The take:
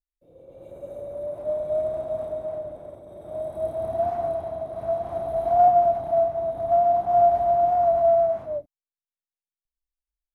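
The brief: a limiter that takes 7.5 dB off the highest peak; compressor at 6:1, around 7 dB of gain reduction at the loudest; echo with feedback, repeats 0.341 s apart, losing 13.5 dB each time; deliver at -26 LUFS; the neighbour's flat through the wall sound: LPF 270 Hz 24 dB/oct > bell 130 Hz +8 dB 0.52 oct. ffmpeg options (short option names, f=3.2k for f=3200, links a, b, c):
-af "acompressor=threshold=-21dB:ratio=6,alimiter=limit=-23.5dB:level=0:latency=1,lowpass=f=270:w=0.5412,lowpass=f=270:w=1.3066,equalizer=f=130:t=o:w=0.52:g=8,aecho=1:1:341|682:0.211|0.0444,volume=20.5dB"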